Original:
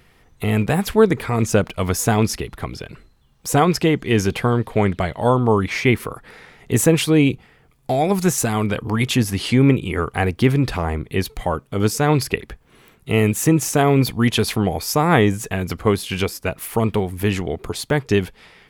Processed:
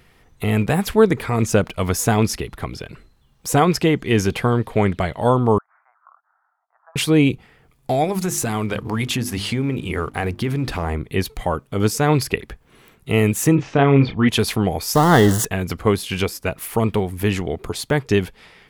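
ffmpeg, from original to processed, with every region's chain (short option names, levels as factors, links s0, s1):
-filter_complex "[0:a]asettb=1/sr,asplit=3[s0][s1][s2];[s0]atrim=end=5.584[s3];[s1]atrim=start=5.58:end=6.96,asetpts=PTS-STARTPTS,afade=t=in:d=0.004:c=qsin,afade=t=out:st=1.376:d=0.004:c=qsin,asuperpass=centerf=980:order=12:qfactor=1.2,aderivative[s4];[s2]atrim=start=6.956[s5];[s3][s4]acrossfade=d=0.004:c1=hsin:c2=qsin[s6];[s6][s5]acrossfade=d=0.004:c1=qsin:c2=hsin,asettb=1/sr,asplit=3[s7][s8][s9];[s7]atrim=end=8.044[s10];[s8]atrim=start=8.04:end=10.92,asetpts=PTS-STARTPTS,afade=t=in:d=0.004:c=qsin,afade=t=out:st=2.876:d=0.004:c=qsin,bandreject=f=50:t=h:w=6,bandreject=f=100:t=h:w=6,bandreject=f=150:t=h:w=6,bandreject=f=200:t=h:w=6,bandreject=f=250:t=h:w=6,bandreject=f=300:t=h:w=6,bandreject=f=350:t=h:w=6,acompressor=threshold=0.141:ratio=6:attack=3.2:release=140:knee=1:detection=peak,aeval=exprs='sgn(val(0))*max(abs(val(0))-0.00316,0)':c=same[s11];[s9]atrim=start=10.916[s12];[s10][s11]acrossfade=d=0.004:c1=hsin:c2=qsin[s13];[s13][s12]acrossfade=d=0.004:c1=qsin:c2=hsin,asettb=1/sr,asplit=3[s14][s15][s16];[s14]atrim=end=13.554[s17];[s15]atrim=start=13.55:end=14.29,asetpts=PTS-STARTPTS,afade=t=in:d=0.004:c=qsin,afade=t=out:st=0.736:d=0.004:c=qsin,lowpass=f=3400:w=0.5412,lowpass=f=3400:w=1.3066,asplit=2[s18][s19];[s19]adelay=29,volume=0.422[s20];[s18][s20]amix=inputs=2:normalize=0,atrim=end_sample=32634[s21];[s16]atrim=start=14.286[s22];[s17][s21]acrossfade=d=0.004:c1=hsin:c2=qsin[s23];[s23][s22]acrossfade=d=0.004:c1=qsin:c2=hsin,asettb=1/sr,asplit=3[s24][s25][s26];[s24]atrim=end=14.954[s27];[s25]atrim=start=14.95:end=15.45,asetpts=PTS-STARTPTS,afade=t=in:d=0.004:c=qsin,afade=t=out:st=0.496:d=0.004:c=qsin,aeval=exprs='val(0)+0.5*0.133*sgn(val(0))':c=same,asuperstop=centerf=2400:order=4:qfactor=2.8[s28];[s26]atrim=start=15.446[s29];[s27][s28]acrossfade=d=0.004:c1=hsin:c2=qsin[s30];[s30][s29]acrossfade=d=0.004:c1=qsin:c2=hsin"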